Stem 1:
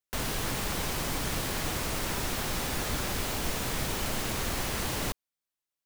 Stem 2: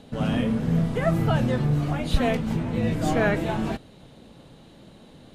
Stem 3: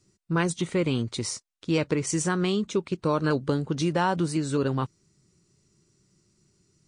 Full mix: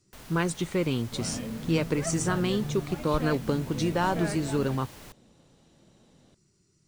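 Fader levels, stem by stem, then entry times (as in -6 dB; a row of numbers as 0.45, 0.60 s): -15.5, -11.5, -2.0 dB; 0.00, 1.00, 0.00 s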